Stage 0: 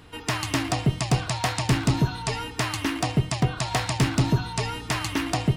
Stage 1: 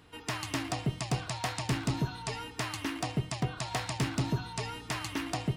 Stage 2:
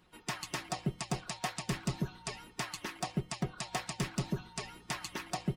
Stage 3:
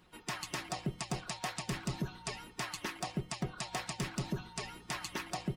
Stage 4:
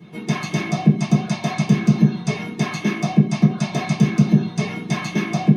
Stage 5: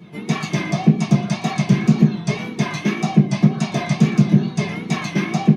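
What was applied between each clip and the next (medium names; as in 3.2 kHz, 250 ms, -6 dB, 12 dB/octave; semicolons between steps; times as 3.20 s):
bass shelf 75 Hz -6 dB; trim -8 dB
harmonic-percussive split harmonic -10 dB; comb 5.5 ms, depth 55%; harmonic-percussive split harmonic -4 dB; trim -2 dB
peak limiter -28 dBFS, peak gain reduction 6 dB; trim +2 dB
compression, threshold -37 dBFS, peak gain reduction 7 dB; reverberation RT60 0.50 s, pre-delay 3 ms, DRR -10 dB
wow and flutter 89 cents; delay 118 ms -18 dB; loudspeaker Doppler distortion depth 0.16 ms; trim +1 dB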